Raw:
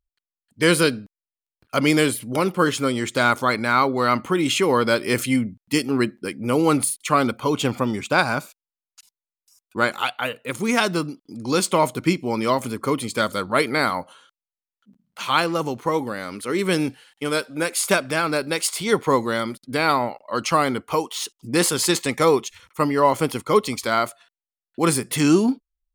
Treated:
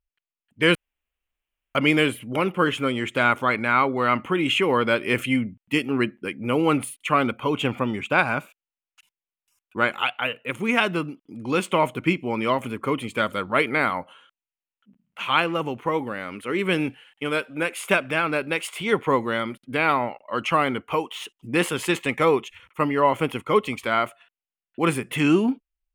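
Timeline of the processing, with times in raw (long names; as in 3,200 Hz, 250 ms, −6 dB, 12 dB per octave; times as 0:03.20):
0:00.75–0:01.75: fill with room tone
whole clip: high shelf with overshoot 3,600 Hz −8.5 dB, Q 3; level −2.5 dB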